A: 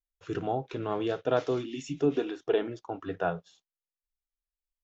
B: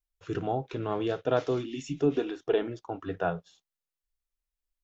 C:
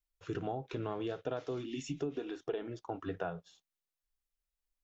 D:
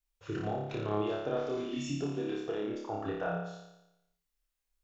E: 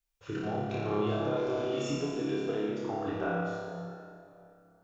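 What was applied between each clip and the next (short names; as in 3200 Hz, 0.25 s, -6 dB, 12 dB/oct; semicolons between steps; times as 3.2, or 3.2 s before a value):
low shelf 93 Hz +7 dB
compressor 10:1, threshold -31 dBFS, peak gain reduction 12.5 dB; gain -2 dB
flutter echo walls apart 4.9 m, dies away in 0.9 s
plate-style reverb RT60 2.7 s, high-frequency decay 0.6×, DRR 0 dB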